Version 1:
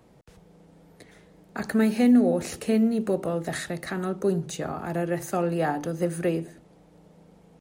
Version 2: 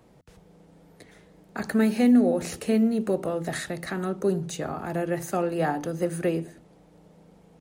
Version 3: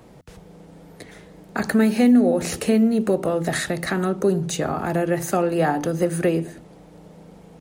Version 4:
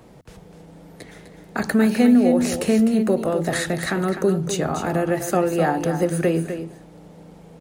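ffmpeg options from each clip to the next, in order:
-af "bandreject=f=85.63:t=h:w=4,bandreject=f=171.26:t=h:w=4,bandreject=f=256.89:t=h:w=4"
-af "acompressor=threshold=0.0282:ratio=1.5,volume=2.82"
-af "aecho=1:1:253:0.355"

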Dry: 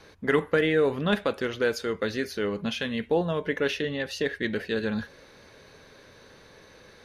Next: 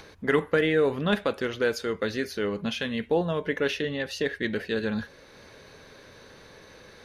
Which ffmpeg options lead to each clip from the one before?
-af "acompressor=mode=upward:threshold=0.00631:ratio=2.5"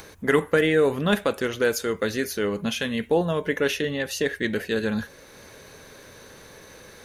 -af "aexciter=amount=2.7:drive=7.1:freq=6400,volume=1.41"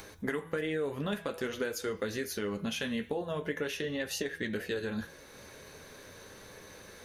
-af "bandreject=f=164:t=h:w=4,bandreject=f=328:t=h:w=4,bandreject=f=492:t=h:w=4,bandreject=f=656:t=h:w=4,bandreject=f=820:t=h:w=4,bandreject=f=984:t=h:w=4,bandreject=f=1148:t=h:w=4,bandreject=f=1312:t=h:w=4,bandreject=f=1476:t=h:w=4,bandreject=f=1640:t=h:w=4,bandreject=f=1804:t=h:w=4,bandreject=f=1968:t=h:w=4,bandreject=f=2132:t=h:w=4,bandreject=f=2296:t=h:w=4,bandreject=f=2460:t=h:w=4,bandreject=f=2624:t=h:w=4,bandreject=f=2788:t=h:w=4,bandreject=f=2952:t=h:w=4,bandreject=f=3116:t=h:w=4,bandreject=f=3280:t=h:w=4,bandreject=f=3444:t=h:w=4,bandreject=f=3608:t=h:w=4,bandreject=f=3772:t=h:w=4,bandreject=f=3936:t=h:w=4,bandreject=f=4100:t=h:w=4,bandreject=f=4264:t=h:w=4,bandreject=f=4428:t=h:w=4,bandreject=f=4592:t=h:w=4,bandreject=f=4756:t=h:w=4,bandreject=f=4920:t=h:w=4,bandreject=f=5084:t=h:w=4,bandreject=f=5248:t=h:w=4,bandreject=f=5412:t=h:w=4,bandreject=f=5576:t=h:w=4,bandreject=f=5740:t=h:w=4,bandreject=f=5904:t=h:w=4,bandreject=f=6068:t=h:w=4,bandreject=f=6232:t=h:w=4,acompressor=threshold=0.0501:ratio=10,flanger=delay=9.8:depth=4.4:regen=-48:speed=0.46:shape=sinusoidal"

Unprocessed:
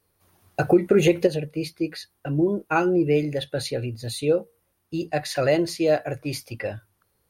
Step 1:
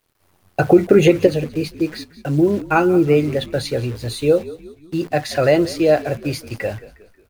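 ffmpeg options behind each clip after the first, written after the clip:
-filter_complex "[0:a]acrusher=bits=8:dc=4:mix=0:aa=0.000001,highshelf=f=4500:g=-6,asplit=5[s0][s1][s2][s3][s4];[s1]adelay=180,afreqshift=-52,volume=0.133[s5];[s2]adelay=360,afreqshift=-104,volume=0.0617[s6];[s3]adelay=540,afreqshift=-156,volume=0.0282[s7];[s4]adelay=720,afreqshift=-208,volume=0.013[s8];[s0][s5][s6][s7][s8]amix=inputs=5:normalize=0,volume=2"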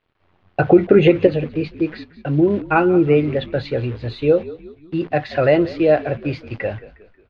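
-af "lowpass=f=3400:w=0.5412,lowpass=f=3400:w=1.3066"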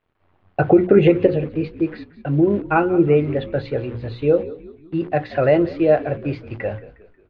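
-af "highshelf=f=2900:g=-11,bandreject=f=60:t=h:w=6,bandreject=f=120:t=h:w=6,bandreject=f=180:t=h:w=6,bandreject=f=240:t=h:w=6,bandreject=f=300:t=h:w=6,bandreject=f=360:t=h:w=6,bandreject=f=420:t=h:w=6,bandreject=f=480:t=h:w=6,bandreject=f=540:t=h:w=6"

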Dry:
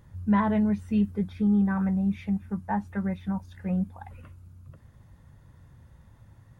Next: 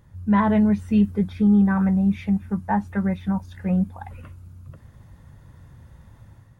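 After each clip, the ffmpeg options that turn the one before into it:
-af "dynaudnorm=f=130:g=5:m=2"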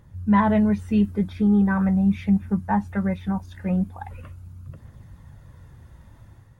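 -af "aphaser=in_gain=1:out_gain=1:delay=3.4:decay=0.25:speed=0.41:type=triangular"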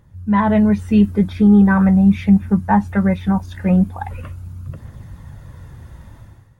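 -af "dynaudnorm=f=130:g=7:m=2.82"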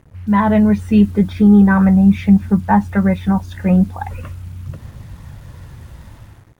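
-af "acrusher=bits=7:mix=0:aa=0.5,volume=1.19"

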